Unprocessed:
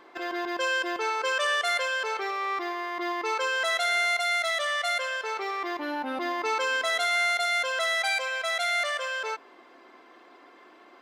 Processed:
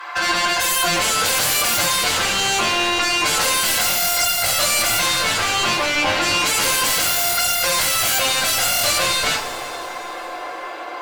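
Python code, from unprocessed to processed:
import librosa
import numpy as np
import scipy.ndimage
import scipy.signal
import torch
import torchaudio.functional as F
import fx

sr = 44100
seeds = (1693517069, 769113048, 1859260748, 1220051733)

y = fx.filter_sweep_highpass(x, sr, from_hz=1100.0, to_hz=520.0, start_s=0.27, end_s=1.18, q=1.4)
y = fx.fold_sine(y, sr, drive_db=17, ceiling_db=-16.5)
y = fx.rev_double_slope(y, sr, seeds[0], early_s=0.23, late_s=3.5, knee_db=-20, drr_db=-5.5)
y = F.gain(torch.from_numpy(y), -5.5).numpy()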